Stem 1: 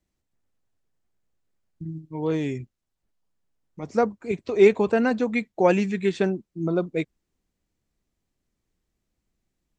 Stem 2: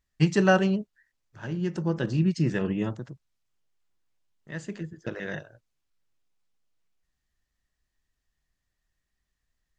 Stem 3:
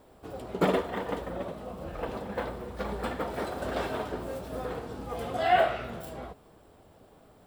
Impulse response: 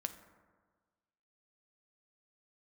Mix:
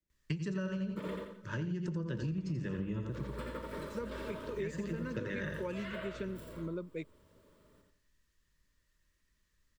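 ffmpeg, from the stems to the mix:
-filter_complex "[0:a]volume=-11.5dB[a];[1:a]adelay=100,volume=1dB,asplit=3[b][c][d];[c]volume=-6.5dB[e];[d]volume=-4dB[f];[2:a]adelay=350,volume=-9dB,asplit=3[g][h][i];[g]atrim=end=1.17,asetpts=PTS-STARTPTS,afade=t=out:st=1.166:d=0.004:c=hsin[j];[h]atrim=start=1.17:end=2.09,asetpts=PTS-STARTPTS,volume=0[k];[i]atrim=start=2.09,asetpts=PTS-STARTPTS,afade=t=in:d=0.004:c=hsin[l];[j][k][l]concat=n=3:v=0:a=1,asplit=2[m][n];[n]volume=-4dB[o];[3:a]atrim=start_sample=2205[p];[e][p]afir=irnorm=-1:irlink=0[q];[f][o]amix=inputs=2:normalize=0,aecho=0:1:85|170|255|340|425:1|0.33|0.109|0.0359|0.0119[r];[a][b][m][q][r]amix=inputs=5:normalize=0,acrossover=split=130[s][t];[t]acompressor=threshold=-38dB:ratio=2[u];[s][u]amix=inputs=2:normalize=0,asuperstop=centerf=750:order=12:qfactor=3.3,acompressor=threshold=-33dB:ratio=10"

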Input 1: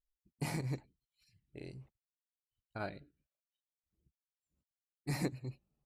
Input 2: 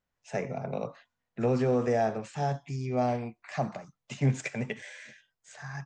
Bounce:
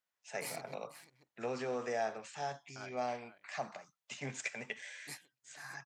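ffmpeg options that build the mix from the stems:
-filter_complex "[0:a]aemphasis=mode=production:type=cd,afwtdn=0.002,volume=-2.5dB,asplit=2[a][b];[b]volume=-14dB[c];[1:a]volume=-1.5dB,asplit=2[d][e];[e]apad=whole_len=258151[f];[a][f]sidechaingate=range=-26dB:threshold=-52dB:ratio=16:detection=peak[g];[c]aecho=0:1:487:1[h];[g][d][h]amix=inputs=3:normalize=0,highpass=f=1.3k:p=1"

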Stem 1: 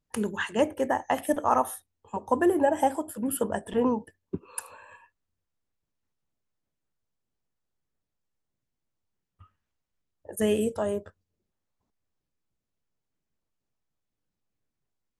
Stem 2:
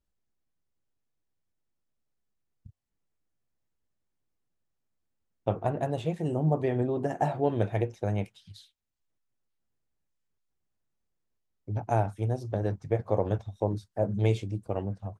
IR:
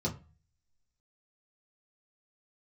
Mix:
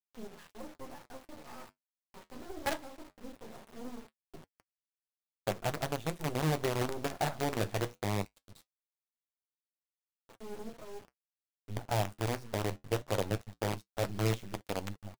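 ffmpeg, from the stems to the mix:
-filter_complex "[0:a]acrossover=split=3100[a][b];[b]acompressor=threshold=-52dB:ratio=4:attack=1:release=60[c];[a][c]amix=inputs=2:normalize=0,lowshelf=f=190:g=-8.5,volume=25.5dB,asoftclip=hard,volume=-25.5dB,volume=2dB,asplit=2[d][e];[e]volume=-20.5dB[f];[1:a]volume=-1.5dB,asplit=2[g][h];[h]apad=whole_len=669975[i];[d][i]sidechaingate=range=-45dB:threshold=-57dB:ratio=16:detection=peak[j];[2:a]atrim=start_sample=2205[k];[f][k]afir=irnorm=-1:irlink=0[l];[j][g][l]amix=inputs=3:normalize=0,acrusher=bits=5:dc=4:mix=0:aa=0.000001,flanger=delay=3.2:depth=9.8:regen=-59:speed=0.2:shape=triangular"

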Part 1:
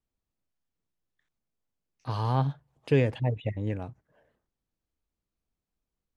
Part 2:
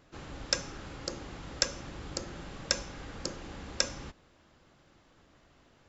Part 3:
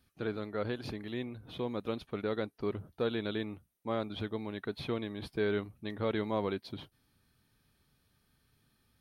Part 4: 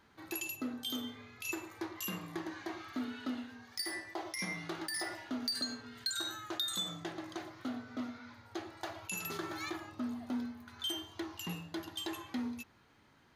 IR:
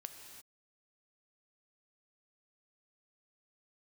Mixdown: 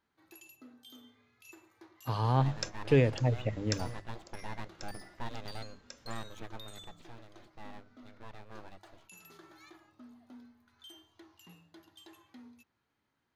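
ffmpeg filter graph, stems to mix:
-filter_complex "[0:a]agate=range=-33dB:threshold=-54dB:ratio=3:detection=peak,volume=-1dB,asplit=2[a][b];[1:a]adelay=2100,volume=-8.5dB[c];[2:a]lowpass=3k,aeval=exprs='abs(val(0))':c=same,adelay=2200,volume=-4.5dB,afade=t=out:st=6.48:d=0.6:silence=0.334965[d];[3:a]volume=-15.5dB[e];[b]apad=whole_len=352096[f];[c][f]sidechaingate=range=-13dB:threshold=-52dB:ratio=16:detection=peak[g];[a][g][d][e]amix=inputs=4:normalize=0,bandreject=f=50:t=h:w=6,bandreject=f=100:t=h:w=6,bandreject=f=150:t=h:w=6,bandreject=f=200:t=h:w=6"

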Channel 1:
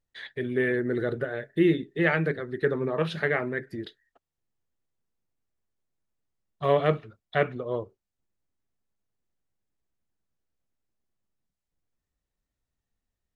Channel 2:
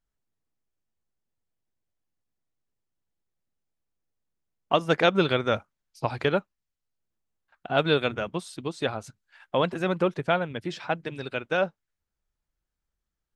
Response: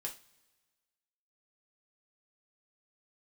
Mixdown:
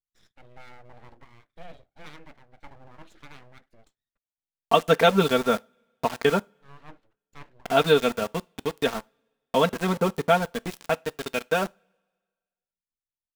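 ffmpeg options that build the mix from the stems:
-filter_complex "[0:a]aeval=exprs='abs(val(0))':c=same,volume=-19.5dB,asplit=2[a][b];[b]volume=-23dB[c];[1:a]aecho=1:1:4.4:0.83,aeval=exprs='val(0)*gte(abs(val(0)),0.0316)':c=same,volume=0.5dB,asplit=3[d][e][f];[e]volume=-16dB[g];[f]apad=whole_len=588825[h];[a][h]sidechaincompress=threshold=-41dB:ratio=3:attack=38:release=411[i];[2:a]atrim=start_sample=2205[j];[c][g]amix=inputs=2:normalize=0[k];[k][j]afir=irnorm=-1:irlink=0[l];[i][d][l]amix=inputs=3:normalize=0,adynamicequalizer=threshold=0.0112:dfrequency=2500:dqfactor=1:tfrequency=2500:tqfactor=1:attack=5:release=100:ratio=0.375:range=3:mode=cutabove:tftype=bell"

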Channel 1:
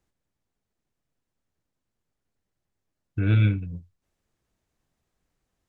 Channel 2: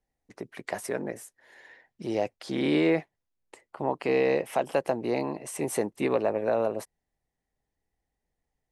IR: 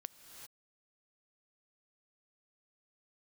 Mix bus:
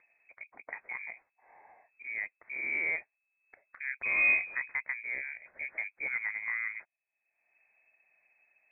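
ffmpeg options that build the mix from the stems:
-filter_complex "[0:a]flanger=delay=22.5:depth=5.3:speed=0.97,adelay=850,volume=-5.5dB[a];[1:a]volume=-9dB[b];[a][b]amix=inputs=2:normalize=0,lowpass=f=2.2k:t=q:w=0.5098,lowpass=f=2.2k:t=q:w=0.6013,lowpass=f=2.2k:t=q:w=0.9,lowpass=f=2.2k:t=q:w=2.563,afreqshift=-2600,acompressor=mode=upward:threshold=-51dB:ratio=2.5"

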